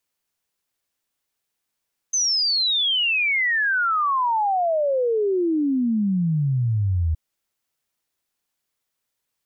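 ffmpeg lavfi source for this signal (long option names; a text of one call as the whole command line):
ffmpeg -f lavfi -i "aevalsrc='0.126*clip(min(t,5.02-t)/0.01,0,1)*sin(2*PI*6300*5.02/log(77/6300)*(exp(log(77/6300)*t/5.02)-1))':duration=5.02:sample_rate=44100" out.wav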